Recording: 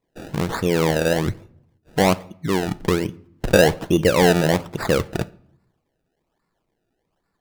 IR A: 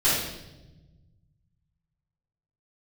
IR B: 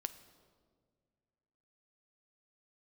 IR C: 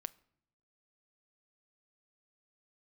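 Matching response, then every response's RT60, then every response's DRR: C; 1.0 s, 1.9 s, non-exponential decay; −12.5, 11.0, 14.5 decibels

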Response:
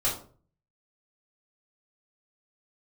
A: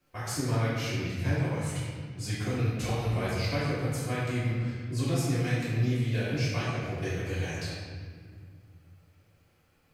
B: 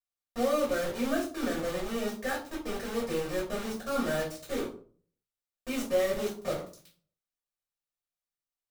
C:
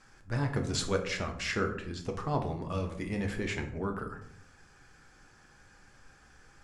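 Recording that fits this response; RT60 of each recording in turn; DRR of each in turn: B; 2.0, 0.45, 0.70 seconds; −12.0, −7.0, 3.5 decibels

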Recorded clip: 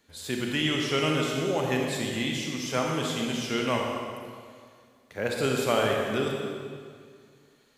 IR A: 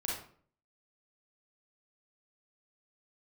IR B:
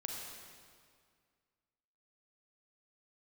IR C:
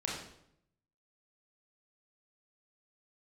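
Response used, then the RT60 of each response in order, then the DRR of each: B; 0.50, 2.0, 0.75 seconds; −4.0, −0.5, −4.0 decibels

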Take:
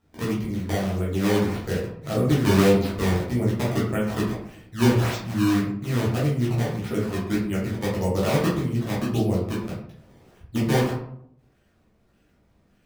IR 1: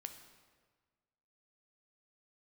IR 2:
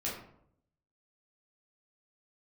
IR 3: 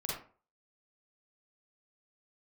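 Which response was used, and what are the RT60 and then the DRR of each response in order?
2; 1.5, 0.70, 0.40 seconds; 6.5, −6.5, −5.0 decibels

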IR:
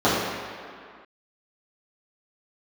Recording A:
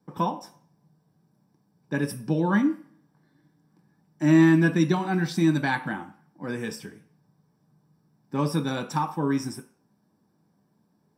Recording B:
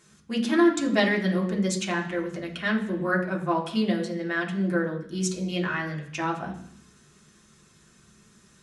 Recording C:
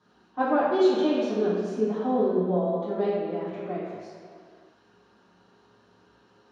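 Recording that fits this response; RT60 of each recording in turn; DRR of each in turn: C; 0.45, 0.65, 2.1 seconds; 4.0, −2.5, −12.5 decibels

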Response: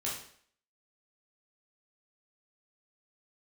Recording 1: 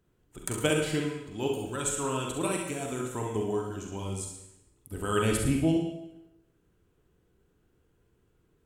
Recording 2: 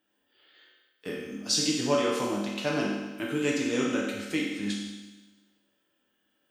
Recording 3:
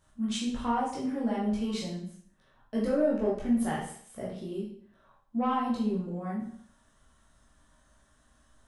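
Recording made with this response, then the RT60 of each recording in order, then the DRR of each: 3; 0.85, 1.2, 0.60 seconds; 0.5, −4.0, −6.0 decibels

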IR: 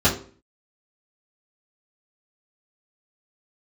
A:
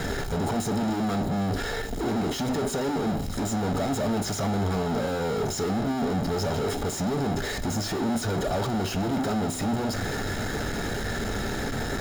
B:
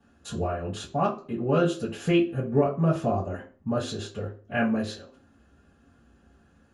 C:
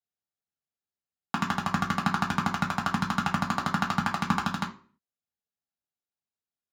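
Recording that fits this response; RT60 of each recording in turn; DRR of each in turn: B; 0.45, 0.45, 0.45 seconds; 8.5, −10.0, −1.0 decibels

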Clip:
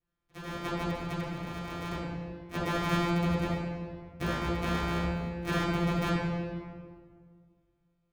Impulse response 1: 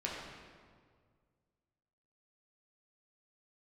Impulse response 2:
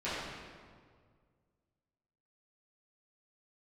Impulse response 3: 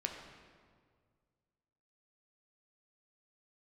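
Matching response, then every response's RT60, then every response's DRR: 2; 1.9, 1.9, 1.9 seconds; −4.5, −13.5, 2.0 decibels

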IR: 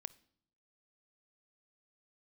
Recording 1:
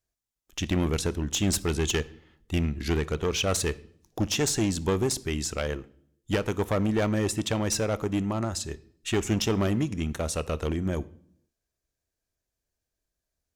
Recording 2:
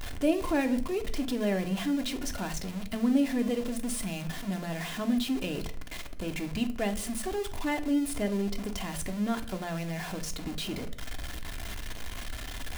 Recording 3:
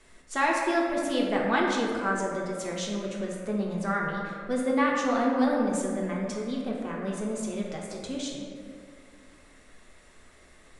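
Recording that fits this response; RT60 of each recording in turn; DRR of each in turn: 1; 0.70, 0.50, 2.3 seconds; 17.5, 5.0, −2.5 decibels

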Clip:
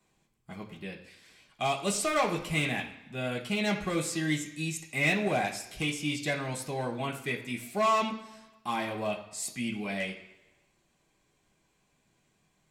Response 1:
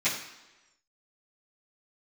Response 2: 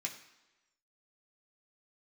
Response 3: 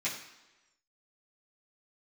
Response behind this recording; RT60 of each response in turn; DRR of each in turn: 2; 1.1, 1.1, 1.1 seconds; −15.0, 0.0, −10.0 decibels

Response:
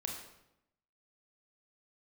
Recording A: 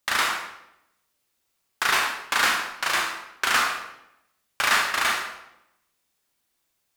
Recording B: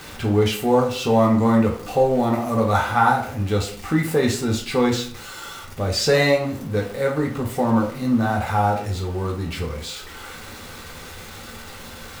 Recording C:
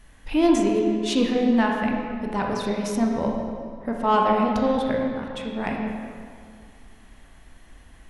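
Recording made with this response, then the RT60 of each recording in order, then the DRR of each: A; 0.85, 0.50, 2.1 seconds; 0.5, −0.5, −0.5 decibels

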